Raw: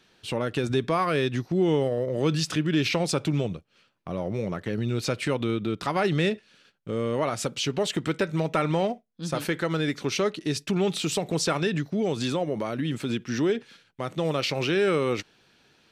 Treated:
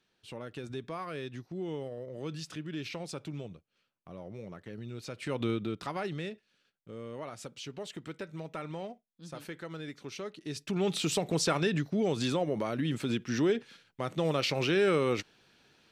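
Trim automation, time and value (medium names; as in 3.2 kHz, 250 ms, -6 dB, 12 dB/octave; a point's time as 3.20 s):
5.12 s -14.5 dB
5.45 s -3.5 dB
6.31 s -15 dB
10.28 s -15 dB
10.95 s -3 dB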